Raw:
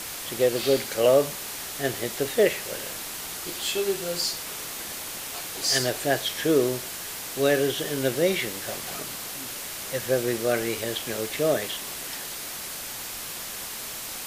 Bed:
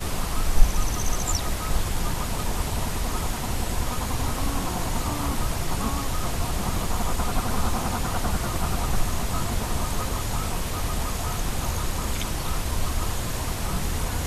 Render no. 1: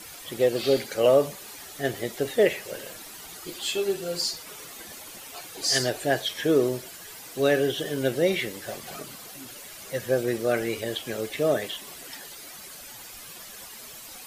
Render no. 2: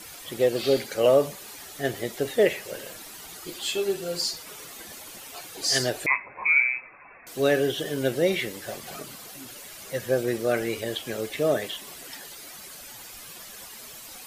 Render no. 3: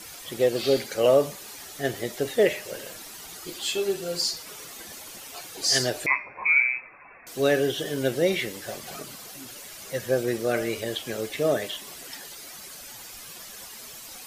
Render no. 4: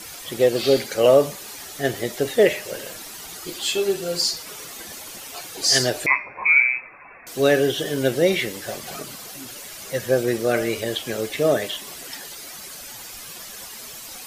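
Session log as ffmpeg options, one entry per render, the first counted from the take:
-af "afftdn=nr=11:nf=-36"
-filter_complex "[0:a]asettb=1/sr,asplit=3[s0][s1][s2];[s0]atrim=end=6.064[s3];[s1]atrim=start=6.06:end=7.27,asetpts=PTS-STARTPTS,afade=t=in:d=0.004:c=qsin,afade=t=out:st=1.206:d=0.004:c=qsin,lowpass=f=2300:t=q:w=0.5098,lowpass=f=2300:t=q:w=0.6013,lowpass=f=2300:t=q:w=0.9,lowpass=f=2300:t=q:w=2.563,afreqshift=-2700[s4];[s2]atrim=start=7.266[s5];[s3][s4]acrossfade=d=0.004:c1=hsin:c2=qsin[s6];[s6][s5]acrossfade=d=0.004:c1=qsin:c2=hsin"
-af "equalizer=f=5700:t=o:w=0.77:g=2.5,bandreject=f=303.5:t=h:w=4,bandreject=f=607:t=h:w=4,bandreject=f=910.5:t=h:w=4,bandreject=f=1214:t=h:w=4,bandreject=f=1517.5:t=h:w=4,bandreject=f=1821:t=h:w=4,bandreject=f=2124.5:t=h:w=4,bandreject=f=2428:t=h:w=4,bandreject=f=2731.5:t=h:w=4,bandreject=f=3035:t=h:w=4,bandreject=f=3338.5:t=h:w=4,bandreject=f=3642:t=h:w=4,bandreject=f=3945.5:t=h:w=4,bandreject=f=4249:t=h:w=4,bandreject=f=4552.5:t=h:w=4,bandreject=f=4856:t=h:w=4,bandreject=f=5159.5:t=h:w=4,bandreject=f=5463:t=h:w=4,bandreject=f=5766.5:t=h:w=4,bandreject=f=6070:t=h:w=4"
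-af "volume=1.68"

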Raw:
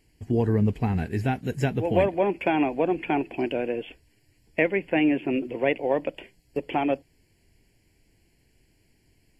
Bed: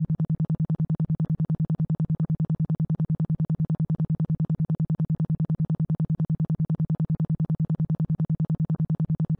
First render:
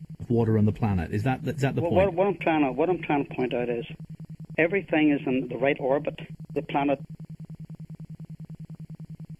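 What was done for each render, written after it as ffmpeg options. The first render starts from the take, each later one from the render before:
-filter_complex "[1:a]volume=0.168[s0];[0:a][s0]amix=inputs=2:normalize=0"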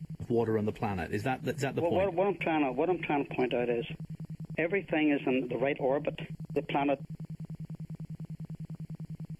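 -filter_complex "[0:a]acrossover=split=310[s0][s1];[s0]acompressor=threshold=0.0158:ratio=6[s2];[s1]alimiter=limit=0.0944:level=0:latency=1:release=169[s3];[s2][s3]amix=inputs=2:normalize=0"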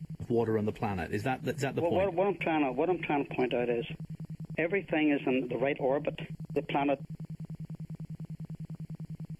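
-af anull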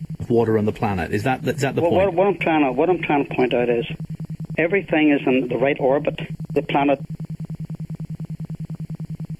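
-af "volume=3.55"

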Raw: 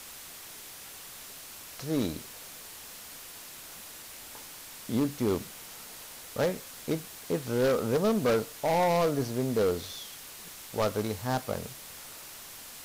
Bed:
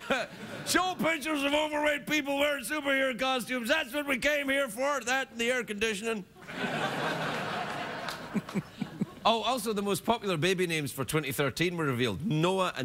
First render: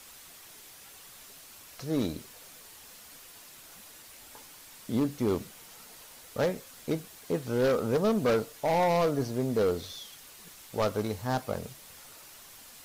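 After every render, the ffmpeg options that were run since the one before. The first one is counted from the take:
-af "afftdn=nr=6:nf=-46"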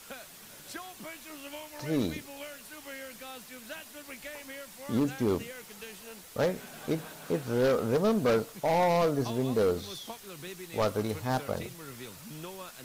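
-filter_complex "[1:a]volume=0.158[s0];[0:a][s0]amix=inputs=2:normalize=0"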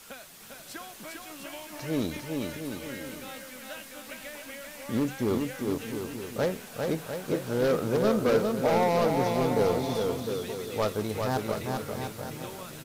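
-af "aecho=1:1:400|700|925|1094|1220:0.631|0.398|0.251|0.158|0.1"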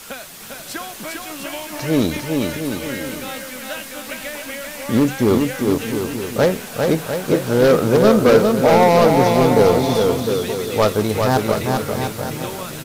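-af "volume=3.98,alimiter=limit=0.708:level=0:latency=1"

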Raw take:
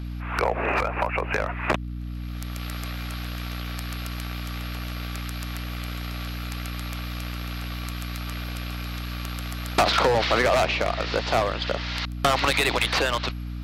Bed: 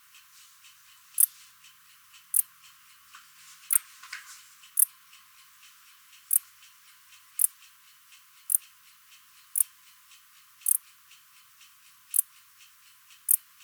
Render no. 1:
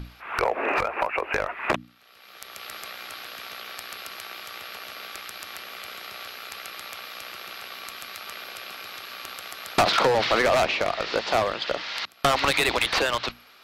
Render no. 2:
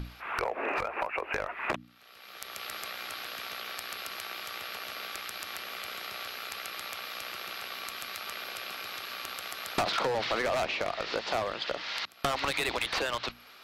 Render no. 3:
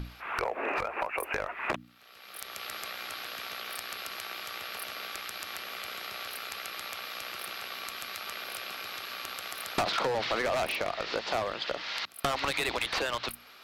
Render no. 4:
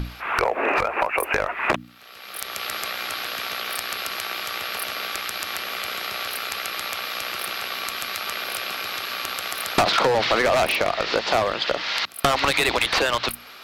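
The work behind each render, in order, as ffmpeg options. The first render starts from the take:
-af "bandreject=f=60:t=h:w=6,bandreject=f=120:t=h:w=6,bandreject=f=180:t=h:w=6,bandreject=f=240:t=h:w=6,bandreject=f=300:t=h:w=6"
-af "acompressor=threshold=0.02:ratio=2"
-filter_complex "[1:a]volume=0.0668[s0];[0:a][s0]amix=inputs=2:normalize=0"
-af "volume=3.16"

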